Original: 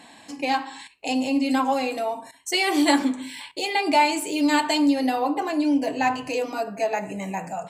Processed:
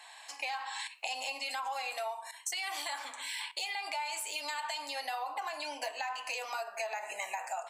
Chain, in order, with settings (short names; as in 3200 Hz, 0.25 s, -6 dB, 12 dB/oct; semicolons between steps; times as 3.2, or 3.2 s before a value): HPF 780 Hz 24 dB/oct; AGC gain up to 14 dB; limiter -11.5 dBFS, peak gain reduction 10 dB; compressor 5:1, threshold -33 dBFS, peak gain reduction 15.5 dB; gain -3 dB